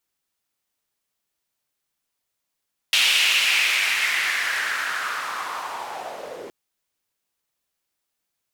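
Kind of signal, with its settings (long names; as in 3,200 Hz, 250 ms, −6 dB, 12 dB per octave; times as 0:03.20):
filter sweep on noise white, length 3.57 s bandpass, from 2,900 Hz, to 390 Hz, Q 3.4, linear, gain ramp −12 dB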